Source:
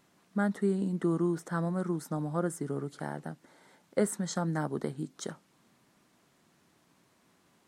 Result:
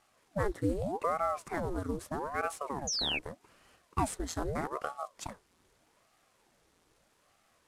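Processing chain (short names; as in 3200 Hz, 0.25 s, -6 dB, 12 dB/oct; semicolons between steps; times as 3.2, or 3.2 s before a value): CVSD 64 kbps; painted sound fall, 2.87–3.19, 2300–6700 Hz -30 dBFS; ring modulator with a swept carrier 540 Hz, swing 85%, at 0.81 Hz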